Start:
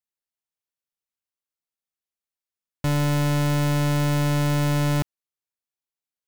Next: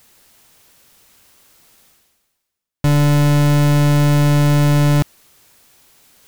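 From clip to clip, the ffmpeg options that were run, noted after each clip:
-af "areverse,acompressor=mode=upward:threshold=0.0316:ratio=2.5,areverse,lowshelf=f=380:g=4,volume=1.88"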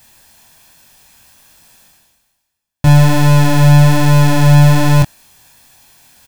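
-af "aecho=1:1:1.2:0.49,flanger=delay=22.5:depth=3.7:speed=1.2,volume=2.24"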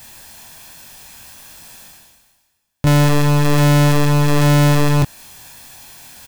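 -filter_complex "[0:a]asplit=2[s0][s1];[s1]acompressor=threshold=0.2:ratio=6,volume=1.26[s2];[s0][s2]amix=inputs=2:normalize=0,volume=3.55,asoftclip=hard,volume=0.282"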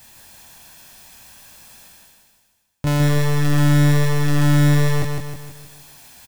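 -af "aecho=1:1:157|314|471|628|785|942:0.596|0.286|0.137|0.0659|0.0316|0.0152,volume=0.473"

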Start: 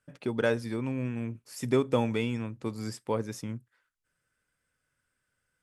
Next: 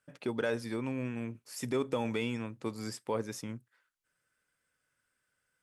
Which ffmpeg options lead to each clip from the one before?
-af "lowshelf=f=82:g=-5.5,alimiter=limit=0.0944:level=0:latency=1:release=15,lowshelf=f=240:g=-5.5"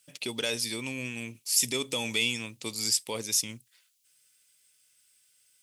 -af "aexciter=amount=8.9:drive=5.3:freq=2300,volume=0.75"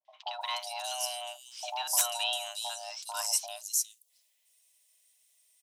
-filter_complex "[0:a]acrossover=split=510|3700[s0][s1][s2];[s1]adelay=50[s3];[s2]adelay=410[s4];[s0][s3][s4]amix=inputs=3:normalize=0,aeval=exprs='(mod(4.22*val(0)+1,2)-1)/4.22':c=same,afreqshift=490,volume=0.841"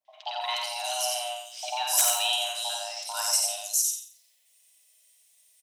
-filter_complex "[0:a]asplit=2[s0][s1];[s1]adelay=50,volume=0.501[s2];[s0][s2]amix=inputs=2:normalize=0,asplit=2[s3][s4];[s4]aecho=0:1:89|178|267|356:0.668|0.18|0.0487|0.0132[s5];[s3][s5]amix=inputs=2:normalize=0,volume=1.41"

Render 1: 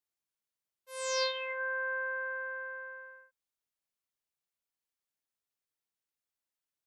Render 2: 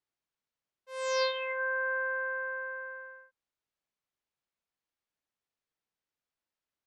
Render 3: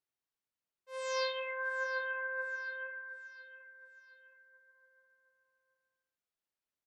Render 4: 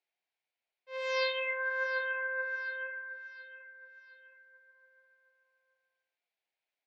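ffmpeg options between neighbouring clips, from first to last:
-af "lowpass=7000,highshelf=f=3700:g=-8.5,volume=1.58"
-af "flanger=delay=7.3:depth=4.2:regen=72:speed=0.53:shape=triangular,aecho=1:1:718|1436|2154|2872:0.2|0.0838|0.0352|0.0148"
-af "highpass=460,equalizer=f=720:t=q:w=4:g=7,equalizer=f=1200:t=q:w=4:g=-9,equalizer=f=2300:t=q:w=4:g=8,lowpass=f=4600:w=0.5412,lowpass=f=4600:w=1.3066,volume=1.58"

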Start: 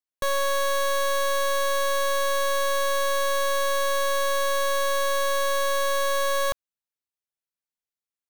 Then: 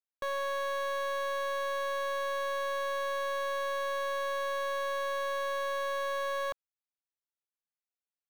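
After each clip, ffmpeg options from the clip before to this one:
-af "bass=f=250:g=-10,treble=f=4000:g=-12,volume=0.422"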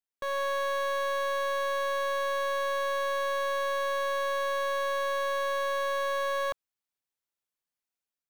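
-af "dynaudnorm=f=100:g=5:m=1.88,volume=0.794"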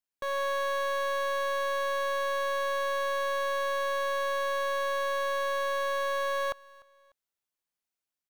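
-af "aecho=1:1:298|596:0.0668|0.0247"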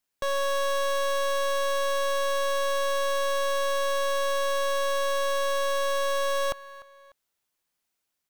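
-af "volume=50.1,asoftclip=hard,volume=0.02,volume=2.82"

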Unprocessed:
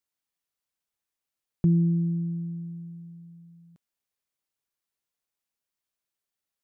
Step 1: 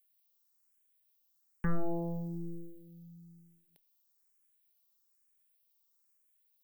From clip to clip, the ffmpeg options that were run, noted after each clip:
-filter_complex "[0:a]aemphasis=mode=production:type=bsi,aeval=exprs='0.1*(cos(1*acos(clip(val(0)/0.1,-1,1)))-cos(1*PI/2))+0.0282*(cos(4*acos(clip(val(0)/0.1,-1,1)))-cos(4*PI/2))+0.0251*(cos(8*acos(clip(val(0)/0.1,-1,1)))-cos(8*PI/2))':c=same,asplit=2[s0][s1];[s1]afreqshift=1.1[s2];[s0][s2]amix=inputs=2:normalize=1,volume=0.891"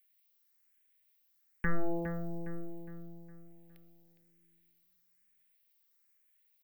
-filter_complex "[0:a]equalizer=f=125:t=o:w=1:g=-9,equalizer=f=1000:t=o:w=1:g=-5,equalizer=f=2000:t=o:w=1:g=10,equalizer=f=8000:t=o:w=1:g=-6,asplit=2[s0][s1];[s1]adelay=411,lowpass=f=4200:p=1,volume=0.316,asplit=2[s2][s3];[s3]adelay=411,lowpass=f=4200:p=1,volume=0.44,asplit=2[s4][s5];[s5]adelay=411,lowpass=f=4200:p=1,volume=0.44,asplit=2[s6][s7];[s7]adelay=411,lowpass=f=4200:p=1,volume=0.44,asplit=2[s8][s9];[s9]adelay=411,lowpass=f=4200:p=1,volume=0.44[s10];[s2][s4][s6][s8][s10]amix=inputs=5:normalize=0[s11];[s0][s11]amix=inputs=2:normalize=0,volume=1.26"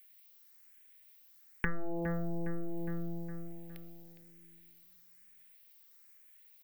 -af "acompressor=threshold=0.00891:ratio=8,volume=3.55"

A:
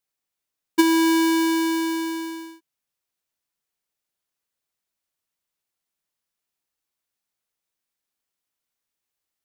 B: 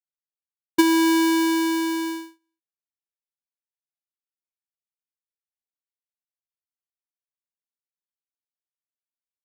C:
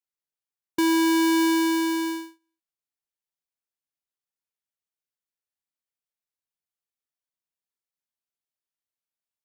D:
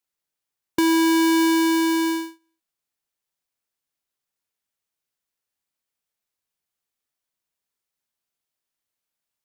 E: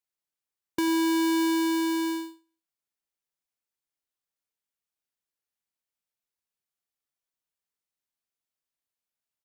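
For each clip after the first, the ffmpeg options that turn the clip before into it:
-af "agate=range=0.01:threshold=0.0316:ratio=16:detection=peak"
-af "alimiter=limit=0.1:level=0:latency=1:release=30"
-af "acompressor=threshold=0.0316:ratio=2,volume=2.37"
-af "aecho=1:1:92:0.141,volume=0.447"

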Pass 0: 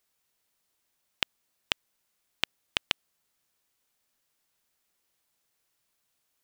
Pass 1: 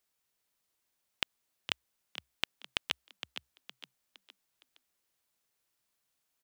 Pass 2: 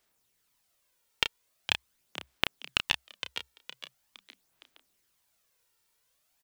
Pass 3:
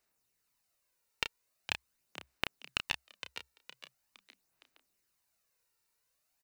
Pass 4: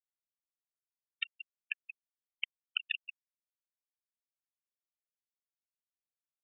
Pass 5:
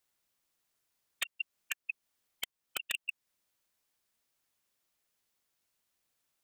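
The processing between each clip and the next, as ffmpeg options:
-filter_complex "[0:a]asplit=5[s0][s1][s2][s3][s4];[s1]adelay=463,afreqshift=63,volume=0.316[s5];[s2]adelay=926,afreqshift=126,volume=0.13[s6];[s3]adelay=1389,afreqshift=189,volume=0.0531[s7];[s4]adelay=1852,afreqshift=252,volume=0.0219[s8];[s0][s5][s6][s7][s8]amix=inputs=5:normalize=0,volume=0.596"
-filter_complex "[0:a]aphaser=in_gain=1:out_gain=1:delay=2.2:decay=0.47:speed=0.43:type=sinusoidal,asplit=2[s0][s1];[s1]adelay=31,volume=0.398[s2];[s0][s2]amix=inputs=2:normalize=0,volume=1.78"
-af "bandreject=f=3300:w=6.6,volume=0.531"
-af "aecho=1:1:180:0.531,afftfilt=real='re*gte(hypot(re,im),0.0708)':imag='im*gte(hypot(re,im),0.0708)':win_size=1024:overlap=0.75,volume=1.26"
-af "acompressor=threshold=0.00355:ratio=2,aeval=exprs='0.0112*(abs(mod(val(0)/0.0112+3,4)-2)-1)':c=same,volume=5.96"

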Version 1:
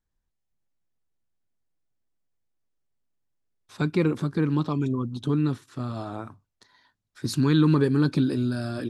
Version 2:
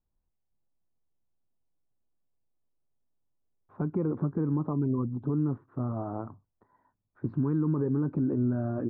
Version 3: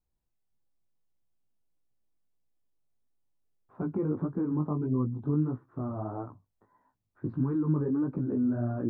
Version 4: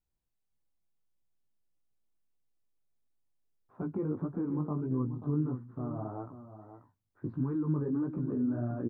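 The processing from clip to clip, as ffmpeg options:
-af "lowpass=f=1100:w=0.5412,lowpass=f=1100:w=1.3066,alimiter=limit=0.1:level=0:latency=1:release=115"
-af "flanger=delay=15.5:depth=4.9:speed=1.6,volume=1.26"
-af "aecho=1:1:536:0.266,volume=0.668"

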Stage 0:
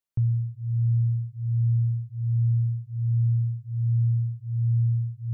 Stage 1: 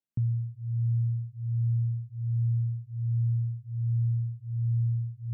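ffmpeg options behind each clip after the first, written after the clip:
-af "equalizer=f=220:t=o:w=1.1:g=15,volume=0.376"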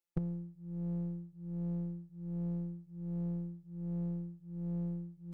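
-af "afftfilt=real='hypot(re,im)*cos(PI*b)':imag='0':win_size=1024:overlap=0.75,aecho=1:1:2.3:0.61,aeval=exprs='0.0447*(cos(1*acos(clip(val(0)/0.0447,-1,1)))-cos(1*PI/2))+0.00447*(cos(3*acos(clip(val(0)/0.0447,-1,1)))-cos(3*PI/2))+0.00126*(cos(7*acos(clip(val(0)/0.0447,-1,1)))-cos(7*PI/2))+0.00158*(cos(8*acos(clip(val(0)/0.0447,-1,1)))-cos(8*PI/2))':c=same,volume=2.37"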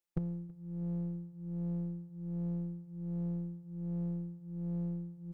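-af "aecho=1:1:325|650|975|1300:0.0631|0.0366|0.0212|0.0123"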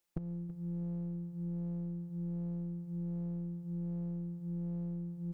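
-af "acompressor=threshold=0.00708:ratio=10,volume=2.37"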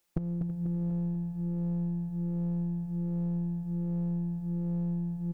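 -af "aecho=1:1:245|490|735|980|1225|1470|1715:0.398|0.223|0.125|0.0699|0.0392|0.0219|0.0123,volume=2.24"

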